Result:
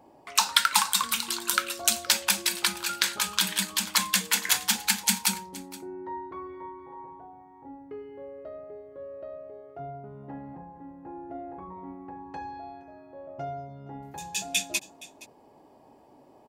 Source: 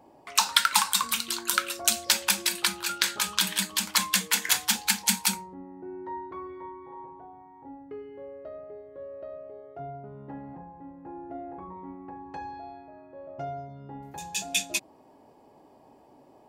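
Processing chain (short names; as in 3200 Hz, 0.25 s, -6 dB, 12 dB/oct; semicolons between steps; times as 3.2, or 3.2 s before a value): echo 0.469 s -19.5 dB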